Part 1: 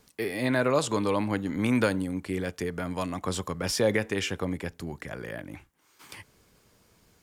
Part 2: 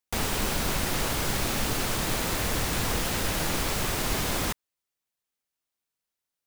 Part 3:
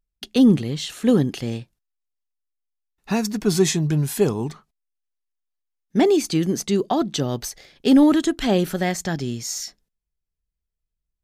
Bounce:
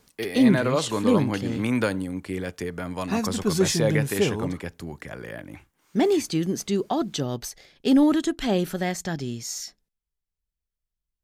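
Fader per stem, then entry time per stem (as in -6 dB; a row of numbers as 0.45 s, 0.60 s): +0.5 dB, mute, -4.0 dB; 0.00 s, mute, 0.00 s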